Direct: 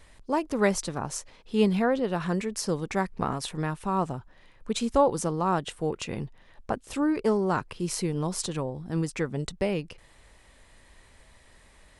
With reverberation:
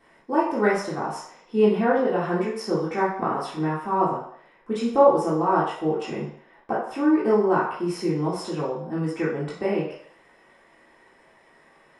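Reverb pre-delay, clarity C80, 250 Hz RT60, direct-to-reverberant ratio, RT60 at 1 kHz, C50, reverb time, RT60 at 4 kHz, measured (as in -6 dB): 3 ms, 7.0 dB, 0.45 s, -8.5 dB, 0.60 s, 3.5 dB, 0.60 s, 0.65 s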